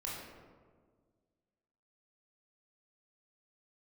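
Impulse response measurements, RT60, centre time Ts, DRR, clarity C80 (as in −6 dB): 1.7 s, 86 ms, −5.5 dB, 2.5 dB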